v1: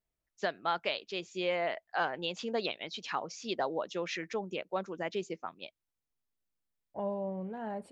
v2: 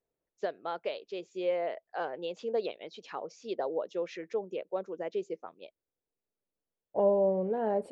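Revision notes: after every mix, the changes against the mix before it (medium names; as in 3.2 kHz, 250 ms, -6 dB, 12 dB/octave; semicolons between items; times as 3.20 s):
first voice -10.0 dB; master: add peaking EQ 470 Hz +14.5 dB 1.3 oct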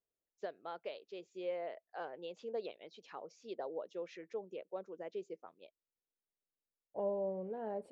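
first voice -9.0 dB; second voice -11.0 dB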